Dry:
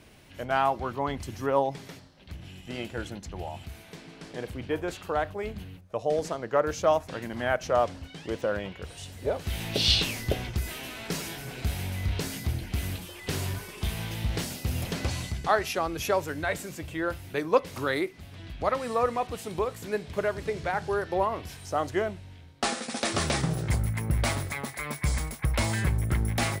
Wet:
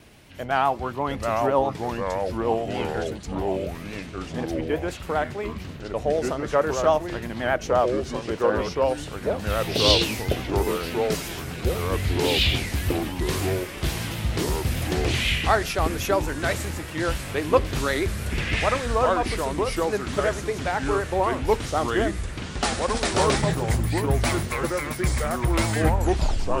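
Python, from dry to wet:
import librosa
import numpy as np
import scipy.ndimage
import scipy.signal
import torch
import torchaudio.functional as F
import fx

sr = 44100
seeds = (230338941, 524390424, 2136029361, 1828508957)

y = fx.tape_stop_end(x, sr, length_s=0.78)
y = fx.vibrato(y, sr, rate_hz=8.0, depth_cents=65.0)
y = fx.echo_pitch(y, sr, ms=638, semitones=-3, count=3, db_per_echo=-3.0)
y = y * 10.0 ** (3.0 / 20.0)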